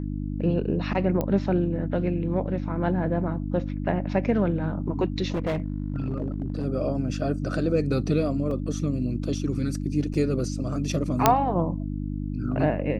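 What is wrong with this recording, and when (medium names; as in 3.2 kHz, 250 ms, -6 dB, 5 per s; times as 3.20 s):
hum 50 Hz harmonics 6 -30 dBFS
1.21 s: pop -14 dBFS
5.32–6.66 s: clipped -22.5 dBFS
8.51 s: dropout 2.7 ms
10.14 s: dropout 4 ms
11.26 s: pop -1 dBFS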